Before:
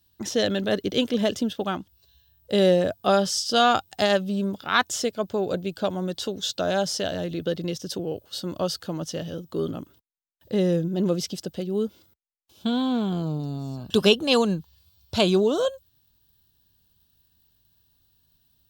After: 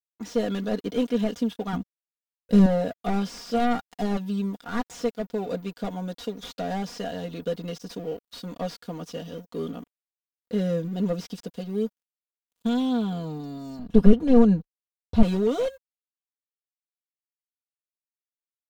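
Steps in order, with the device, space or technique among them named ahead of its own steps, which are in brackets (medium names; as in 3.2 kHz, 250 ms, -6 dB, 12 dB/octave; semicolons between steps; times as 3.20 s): early transistor amplifier (crossover distortion -47 dBFS; slew-rate limiter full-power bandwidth 57 Hz); 1.73–2.66 s: tone controls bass +14 dB, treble +3 dB; comb 4.2 ms, depth 84%; 13.79–15.23 s: tilt EQ -3 dB/octave; trim -4.5 dB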